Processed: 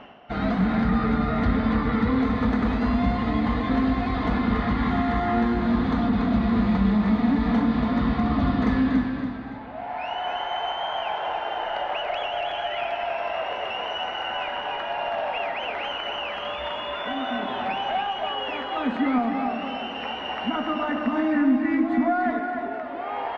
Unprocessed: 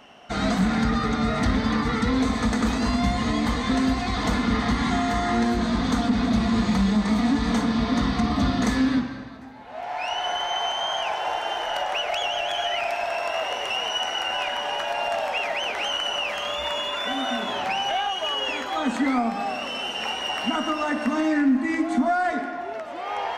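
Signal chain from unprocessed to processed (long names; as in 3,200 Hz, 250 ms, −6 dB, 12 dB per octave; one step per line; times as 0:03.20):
reversed playback
upward compression, threshold −29 dBFS
reversed playback
high-frequency loss of the air 370 metres
repeating echo 284 ms, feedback 38%, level −6.5 dB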